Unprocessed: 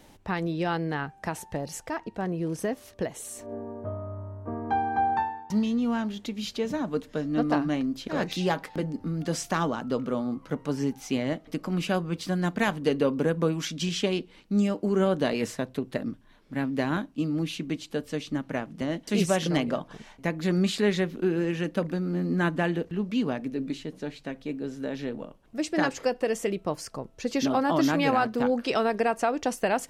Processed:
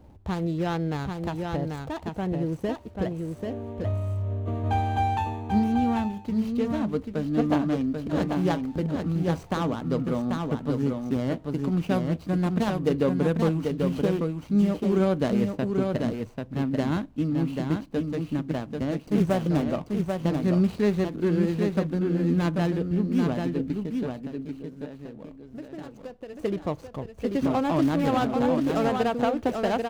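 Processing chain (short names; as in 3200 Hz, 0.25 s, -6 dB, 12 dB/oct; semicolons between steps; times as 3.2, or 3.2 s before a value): median filter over 25 samples; bell 76 Hz +13.5 dB 1.3 oct; 24.06–26.39 compressor 6:1, threshold -38 dBFS, peak gain reduction 16.5 dB; echo 0.789 s -4.5 dB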